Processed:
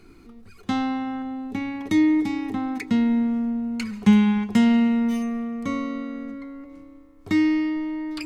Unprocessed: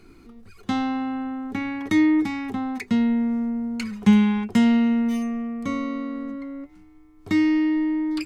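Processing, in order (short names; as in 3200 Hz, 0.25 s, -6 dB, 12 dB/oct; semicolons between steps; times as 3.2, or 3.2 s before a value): 1.22–2.54 bell 1500 Hz -8 dB 0.86 oct; digital reverb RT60 2.6 s, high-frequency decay 0.85×, pre-delay 85 ms, DRR 17 dB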